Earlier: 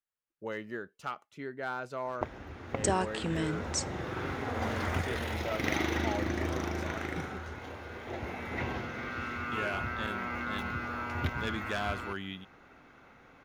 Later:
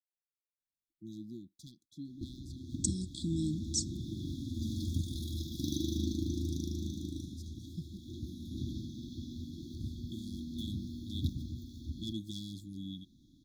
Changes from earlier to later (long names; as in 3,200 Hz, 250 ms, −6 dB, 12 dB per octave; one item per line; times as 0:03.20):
speech: entry +0.60 s
master: add linear-phase brick-wall band-stop 350–3,300 Hz